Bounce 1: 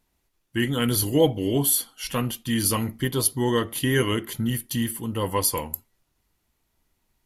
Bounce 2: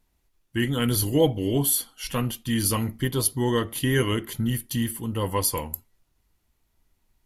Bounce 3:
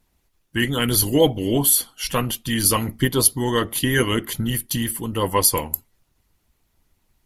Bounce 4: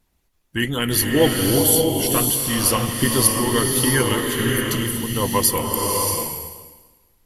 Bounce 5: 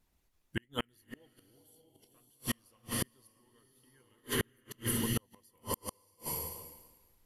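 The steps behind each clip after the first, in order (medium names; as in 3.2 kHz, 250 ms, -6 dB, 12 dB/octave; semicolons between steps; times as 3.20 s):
bass shelf 83 Hz +8 dB; trim -1.5 dB
harmonic-percussive split percussive +8 dB
swelling reverb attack 630 ms, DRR 0 dB; trim -1 dB
inverted gate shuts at -11 dBFS, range -40 dB; trim -7.5 dB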